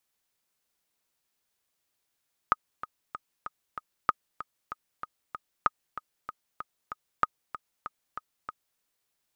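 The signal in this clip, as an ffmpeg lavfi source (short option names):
-f lavfi -i "aevalsrc='pow(10,(-8-14.5*gte(mod(t,5*60/191),60/191))/20)*sin(2*PI*1250*mod(t,60/191))*exp(-6.91*mod(t,60/191)/0.03)':d=6.28:s=44100"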